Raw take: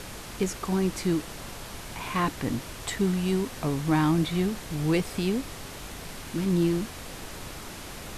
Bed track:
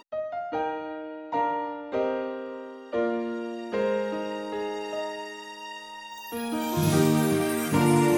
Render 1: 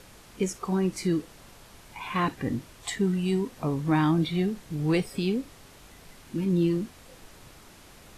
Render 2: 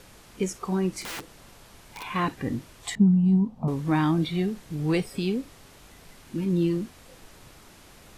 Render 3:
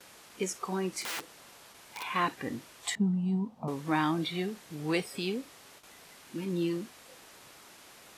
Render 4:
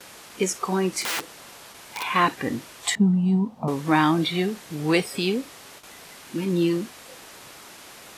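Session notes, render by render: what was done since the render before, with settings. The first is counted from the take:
noise print and reduce 11 dB
1.01–2.03 s: integer overflow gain 30.5 dB; 2.95–3.68 s: FFT filter 100 Hz 0 dB, 220 Hz +10 dB, 320 Hz -12 dB, 860 Hz 0 dB, 1.7 kHz -22 dB, 3.3 kHz -18 dB, 9.8 kHz -24 dB
gate with hold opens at -41 dBFS; high-pass 540 Hz 6 dB/octave
trim +9 dB

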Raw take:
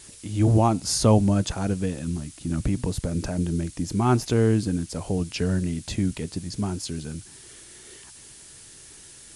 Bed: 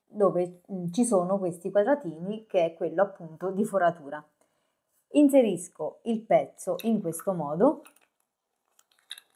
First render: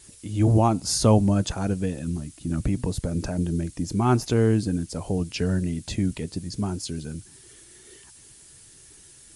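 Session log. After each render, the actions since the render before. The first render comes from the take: noise reduction 6 dB, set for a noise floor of -47 dBFS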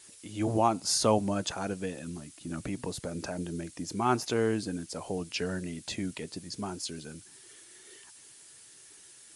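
high-pass 620 Hz 6 dB/octave; treble shelf 5.7 kHz -4.5 dB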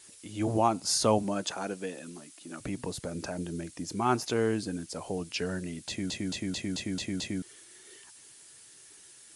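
1.22–2.60 s: high-pass 160 Hz -> 360 Hz; 5.88 s: stutter in place 0.22 s, 7 plays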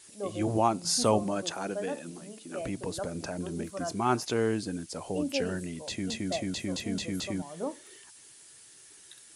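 add bed -13 dB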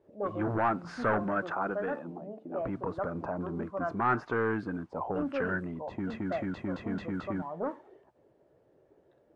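saturation -25 dBFS, distortion -10 dB; touch-sensitive low-pass 510–1500 Hz up, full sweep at -30 dBFS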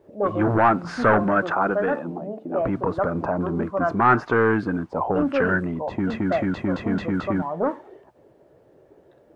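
trim +10.5 dB

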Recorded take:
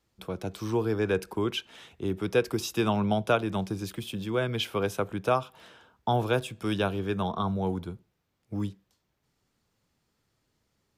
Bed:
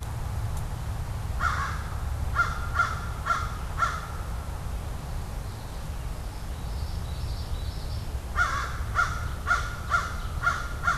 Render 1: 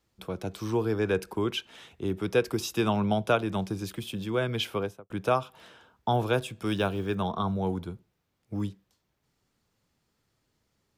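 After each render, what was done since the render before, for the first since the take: 4.69–5.10 s: studio fade out; 6.66–7.16 s: block-companded coder 7-bit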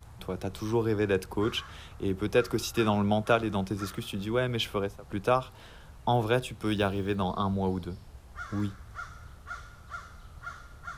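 add bed -16 dB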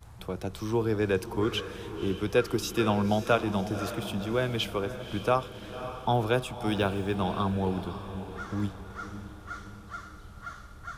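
echo that smears into a reverb 546 ms, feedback 52%, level -11 dB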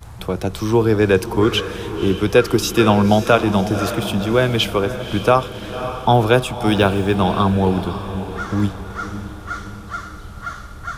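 trim +12 dB; peak limiter -1 dBFS, peak gain reduction 3 dB

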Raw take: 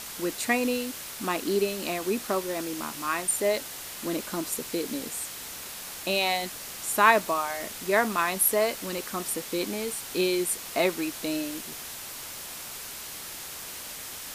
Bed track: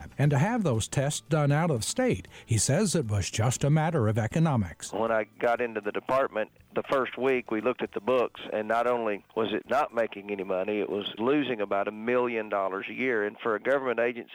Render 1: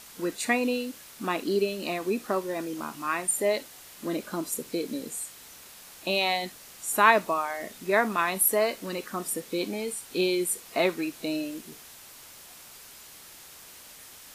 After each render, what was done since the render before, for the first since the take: noise print and reduce 9 dB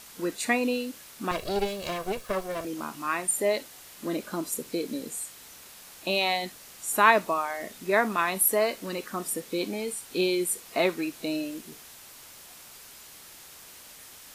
1.31–2.65 s: comb filter that takes the minimum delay 1.8 ms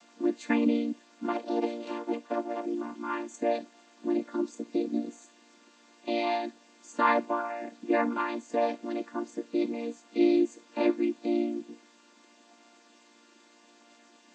vocoder on a held chord major triad, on A#3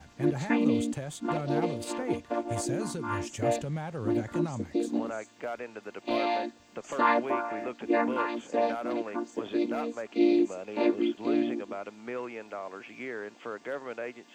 add bed track -10.5 dB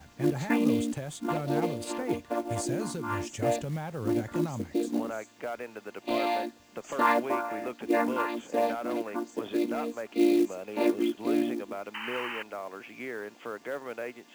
11.94–12.43 s: painted sound noise 800–3100 Hz -37 dBFS; companded quantiser 6-bit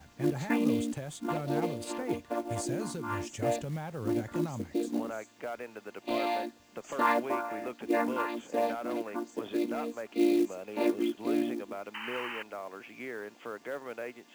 trim -2.5 dB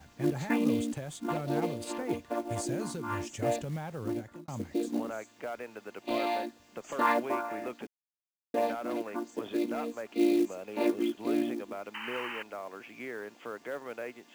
3.94–4.48 s: fade out linear; 7.87–8.54 s: mute

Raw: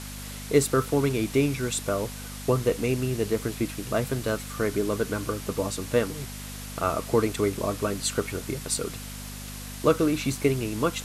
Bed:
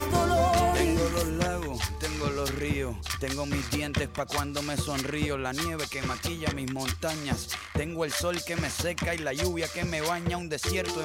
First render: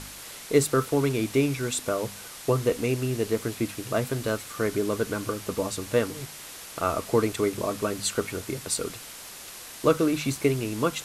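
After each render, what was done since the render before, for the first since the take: de-hum 50 Hz, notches 5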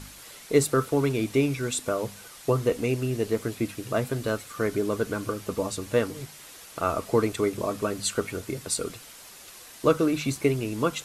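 noise reduction 6 dB, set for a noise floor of -43 dBFS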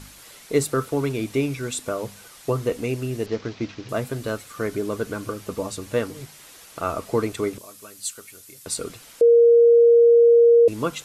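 3.26–3.89 s: CVSD coder 32 kbps; 7.58–8.66 s: pre-emphasis filter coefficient 0.9; 9.21–10.68 s: bleep 469 Hz -10 dBFS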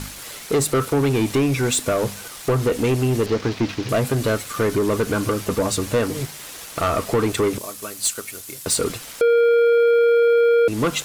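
compression 2:1, threshold -24 dBFS, peak gain reduction 6.5 dB; waveshaping leveller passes 3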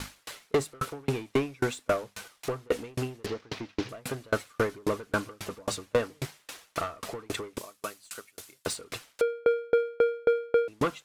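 overdrive pedal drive 6 dB, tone 3.8 kHz, clips at -12 dBFS; sawtooth tremolo in dB decaying 3.7 Hz, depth 36 dB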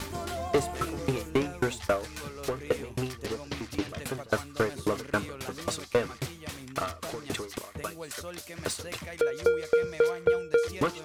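add bed -11.5 dB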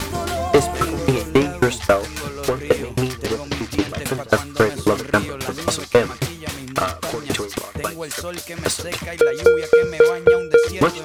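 trim +11 dB

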